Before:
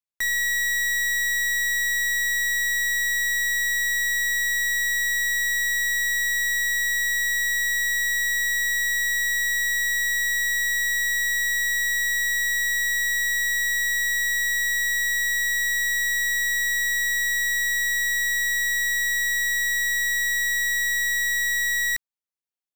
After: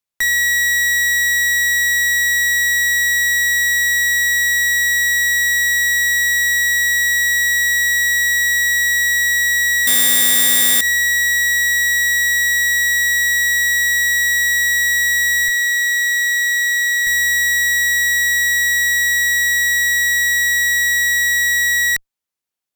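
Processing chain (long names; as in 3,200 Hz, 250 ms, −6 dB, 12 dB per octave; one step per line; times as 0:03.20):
0:15.48–0:17.07: high-pass filter 1,300 Hz 24 dB per octave
asymmetric clip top −22 dBFS, bottom −18 dBFS
0:09.87–0:10.81: bad sample-rate conversion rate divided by 8×, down none, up zero stuff
boost into a limiter +9 dB
level −1 dB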